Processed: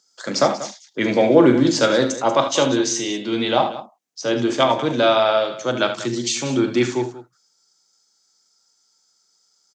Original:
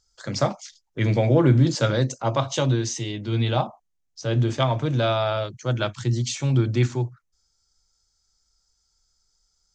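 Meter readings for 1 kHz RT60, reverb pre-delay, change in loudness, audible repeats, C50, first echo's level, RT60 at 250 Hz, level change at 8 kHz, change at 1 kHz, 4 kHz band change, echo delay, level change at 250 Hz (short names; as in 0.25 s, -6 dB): none, none, +4.0 dB, 3, none, -11.5 dB, none, +7.5 dB, +7.5 dB, +7.5 dB, 41 ms, +6.0 dB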